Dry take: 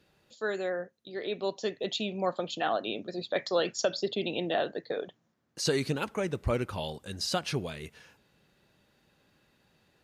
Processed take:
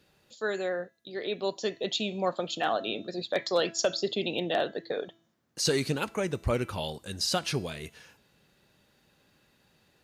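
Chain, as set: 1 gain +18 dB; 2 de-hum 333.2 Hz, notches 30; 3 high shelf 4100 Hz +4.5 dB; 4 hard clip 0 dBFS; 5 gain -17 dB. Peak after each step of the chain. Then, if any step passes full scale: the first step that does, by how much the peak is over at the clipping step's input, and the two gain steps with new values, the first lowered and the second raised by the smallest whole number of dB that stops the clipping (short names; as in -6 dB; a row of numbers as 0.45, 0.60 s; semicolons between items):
+3.5, +3.5, +4.0, 0.0, -17.0 dBFS; step 1, 4.0 dB; step 1 +14 dB, step 5 -13 dB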